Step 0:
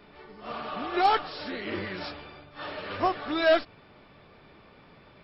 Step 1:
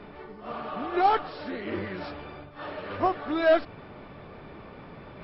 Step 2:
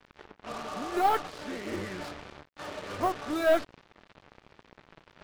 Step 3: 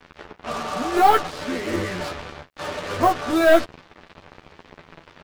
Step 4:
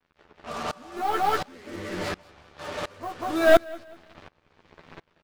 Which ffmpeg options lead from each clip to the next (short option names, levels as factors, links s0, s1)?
-af "lowpass=f=1400:p=1,areverse,acompressor=mode=upward:threshold=0.0141:ratio=2.5,areverse,volume=1.26"
-af "aeval=exprs='0.266*(cos(1*acos(clip(val(0)/0.266,-1,1)))-cos(1*PI/2))+0.0211*(cos(4*acos(clip(val(0)/0.266,-1,1)))-cos(4*PI/2))':c=same,acrusher=bits=5:mix=0:aa=0.5,volume=0.708"
-filter_complex "[0:a]asplit=2[s0][s1];[s1]adelay=12,volume=0.631[s2];[s0][s2]amix=inputs=2:normalize=0,volume=2.66"
-filter_complex "[0:a]asplit=2[s0][s1];[s1]aecho=0:1:189|378|567:0.631|0.0946|0.0142[s2];[s0][s2]amix=inputs=2:normalize=0,aeval=exprs='val(0)*pow(10,-25*if(lt(mod(-1.4*n/s,1),2*abs(-1.4)/1000),1-mod(-1.4*n/s,1)/(2*abs(-1.4)/1000),(mod(-1.4*n/s,1)-2*abs(-1.4)/1000)/(1-2*abs(-1.4)/1000))/20)':c=same"